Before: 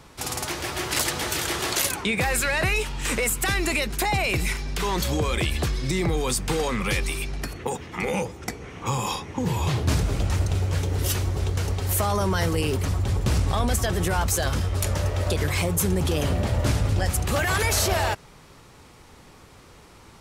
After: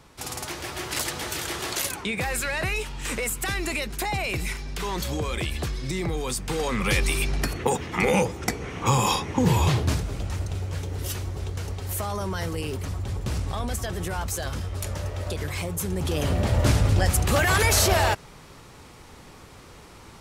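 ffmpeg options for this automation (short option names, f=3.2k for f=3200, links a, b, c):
-af "volume=13.5dB,afade=t=in:st=6.49:d=0.8:silence=0.354813,afade=t=out:st=9.55:d=0.47:silence=0.281838,afade=t=in:st=15.88:d=0.76:silence=0.375837"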